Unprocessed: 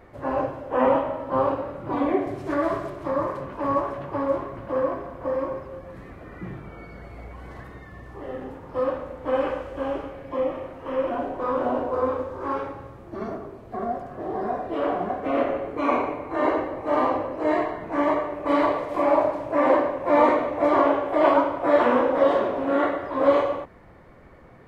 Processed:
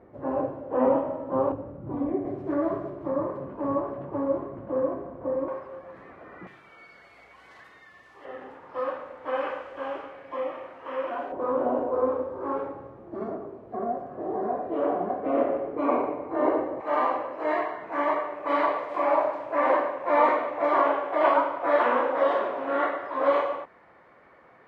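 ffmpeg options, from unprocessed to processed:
ffmpeg -i in.wav -af "asetnsamples=nb_out_samples=441:pad=0,asendcmd='1.52 bandpass f 130;2.25 bandpass f 290;5.48 bandpass f 1000;6.47 bandpass f 3600;8.25 bandpass f 1600;11.32 bandpass f 450;16.8 bandpass f 1400',bandpass=frequency=310:width_type=q:width=0.61:csg=0" out.wav

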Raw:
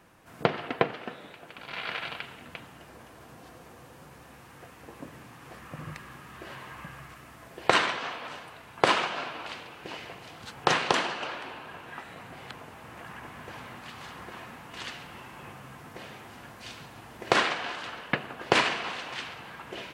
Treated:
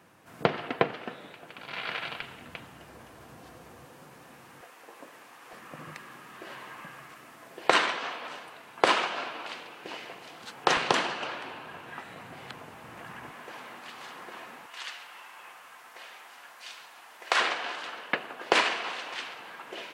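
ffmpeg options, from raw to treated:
ffmpeg -i in.wav -af "asetnsamples=nb_out_samples=441:pad=0,asendcmd='2.21 highpass f 42;3.85 highpass f 150;4.61 highpass f 470;5.53 highpass f 230;10.77 highpass f 98;13.31 highpass f 300;14.66 highpass f 830;17.4 highpass f 330',highpass=97" out.wav

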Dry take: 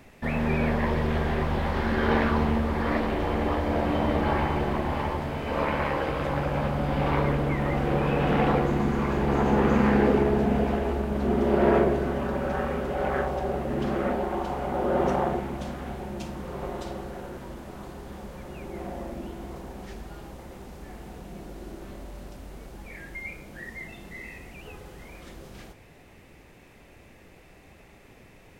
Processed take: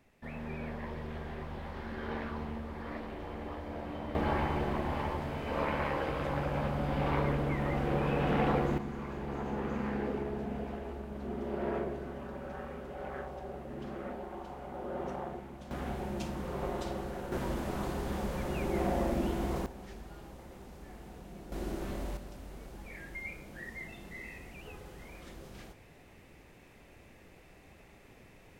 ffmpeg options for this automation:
ffmpeg -i in.wav -af "asetnsamples=nb_out_samples=441:pad=0,asendcmd='4.15 volume volume -6dB;8.78 volume volume -14dB;15.71 volume volume -2dB;17.32 volume volume 5dB;19.66 volume volume -7dB;21.52 volume volume 3dB;22.17 volume volume -4.5dB',volume=-15dB" out.wav

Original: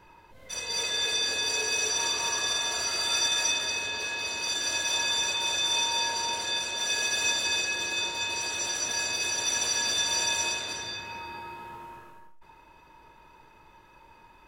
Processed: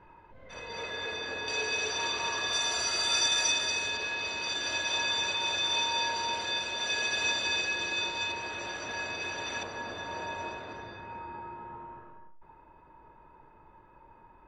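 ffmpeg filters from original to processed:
ffmpeg -i in.wav -af "asetnsamples=nb_out_samples=441:pad=0,asendcmd='1.48 lowpass f 3500;2.53 lowpass f 7200;3.97 lowpass f 3900;8.32 lowpass f 2300;9.63 lowpass f 1300',lowpass=1900" out.wav

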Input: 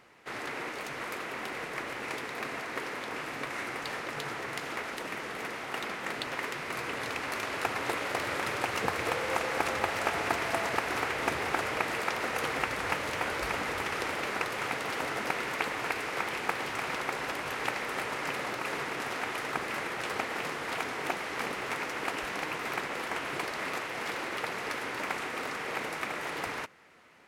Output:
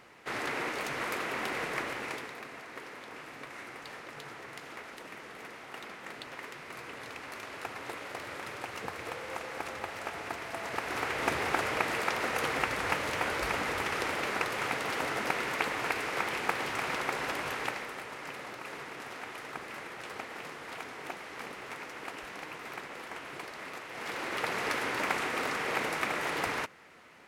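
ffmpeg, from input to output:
ffmpeg -i in.wav -af "volume=23dB,afade=type=out:start_time=1.71:duration=0.72:silence=0.266073,afade=type=in:start_time=10.54:duration=0.79:silence=0.354813,afade=type=out:start_time=17.44:duration=0.54:silence=0.375837,afade=type=in:start_time=23.85:duration=0.75:silence=0.281838" out.wav

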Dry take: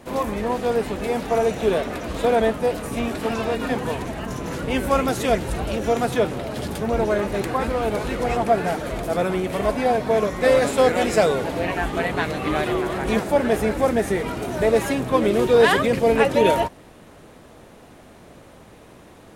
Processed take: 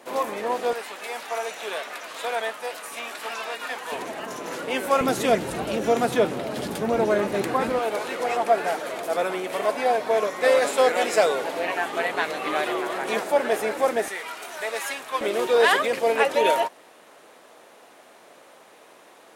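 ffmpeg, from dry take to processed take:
ffmpeg -i in.wav -af "asetnsamples=nb_out_samples=441:pad=0,asendcmd='0.73 highpass f 1000;3.92 highpass f 410;5.01 highpass f 180;7.79 highpass f 470;14.08 highpass f 1100;15.21 highpass f 530',highpass=430" out.wav

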